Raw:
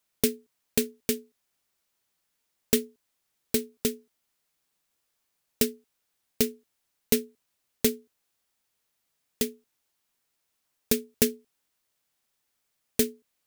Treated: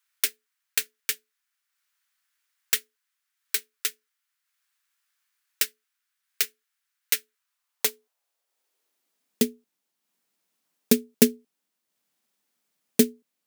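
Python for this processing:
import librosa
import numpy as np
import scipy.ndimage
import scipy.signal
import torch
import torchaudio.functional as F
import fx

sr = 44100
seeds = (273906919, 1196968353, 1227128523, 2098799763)

y = fx.transient(x, sr, attack_db=3, sustain_db=-4)
y = fx.filter_sweep_highpass(y, sr, from_hz=1500.0, to_hz=200.0, start_s=7.31, end_s=9.44, q=2.0)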